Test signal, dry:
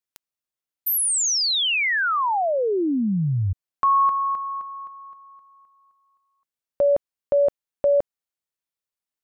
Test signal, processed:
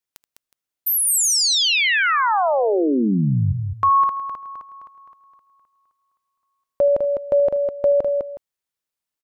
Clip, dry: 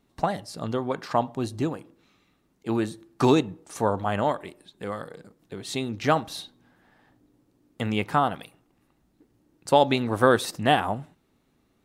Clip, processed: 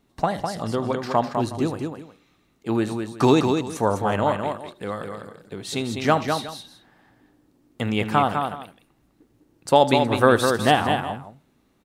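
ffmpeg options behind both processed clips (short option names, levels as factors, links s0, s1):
-af "aecho=1:1:78|204|366:0.126|0.531|0.133,volume=1.33"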